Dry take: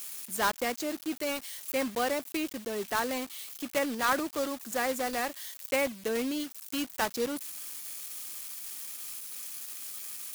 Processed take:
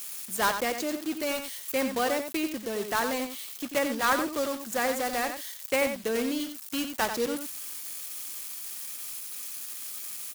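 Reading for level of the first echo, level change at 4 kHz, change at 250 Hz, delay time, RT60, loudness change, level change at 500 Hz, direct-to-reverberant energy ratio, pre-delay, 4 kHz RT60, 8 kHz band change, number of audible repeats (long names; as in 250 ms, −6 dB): −8.0 dB, +2.5 dB, +2.5 dB, 90 ms, no reverb audible, +2.5 dB, +2.5 dB, no reverb audible, no reverb audible, no reverb audible, +2.5 dB, 1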